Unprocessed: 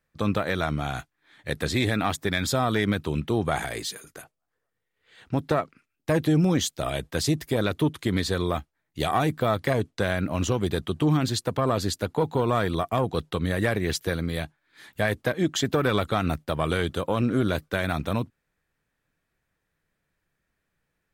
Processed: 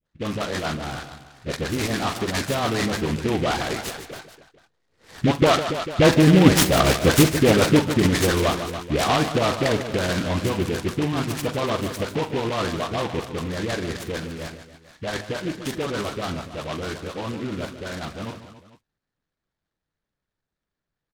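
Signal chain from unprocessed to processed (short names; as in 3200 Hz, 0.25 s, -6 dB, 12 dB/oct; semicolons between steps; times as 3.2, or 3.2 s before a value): Doppler pass-by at 6.66, 6 m/s, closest 6 m; air absorption 67 m; dispersion highs, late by 67 ms, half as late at 890 Hz; low-pass opened by the level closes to 2800 Hz, open at -24.5 dBFS; on a send: tapped delay 44/72/149/282/444 ms -10.5/-16.5/-10.5/-14/-19 dB; on the sum: harmonic-percussive split percussive +7 dB; in parallel at +2 dB: compressor, threshold -32 dBFS, peak gain reduction 18 dB; on the sum: noise-modulated delay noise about 2100 Hz, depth 0.082 ms; gain +4 dB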